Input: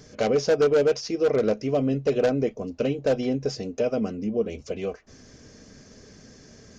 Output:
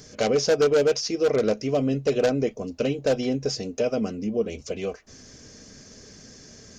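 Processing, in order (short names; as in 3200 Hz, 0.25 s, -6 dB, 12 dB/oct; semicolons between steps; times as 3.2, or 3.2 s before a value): high shelf 3800 Hz +9 dB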